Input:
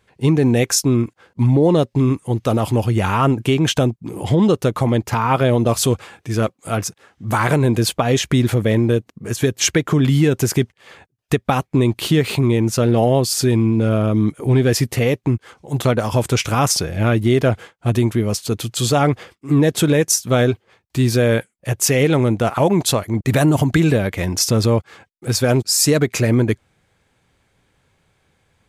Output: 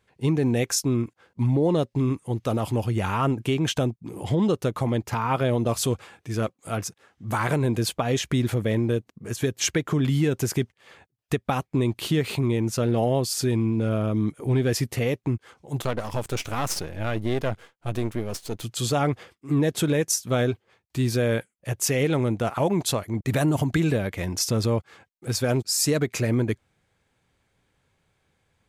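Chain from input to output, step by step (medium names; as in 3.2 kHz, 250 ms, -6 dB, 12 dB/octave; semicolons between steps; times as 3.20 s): 15.82–18.63 s: partial rectifier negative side -12 dB; trim -7.5 dB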